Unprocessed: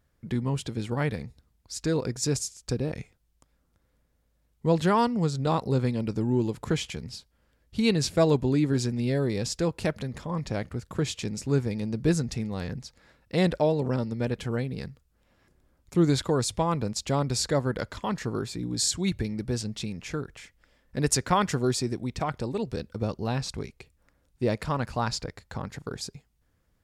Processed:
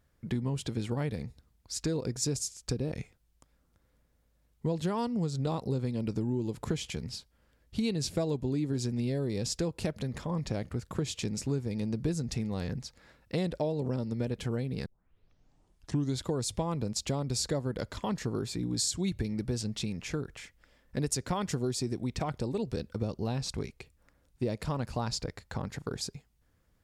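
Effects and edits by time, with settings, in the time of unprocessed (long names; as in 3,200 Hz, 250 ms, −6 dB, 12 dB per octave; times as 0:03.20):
0:14.86: tape start 1.33 s
whole clip: dynamic equaliser 1,500 Hz, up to −7 dB, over −42 dBFS, Q 0.76; downward compressor, threshold −27 dBFS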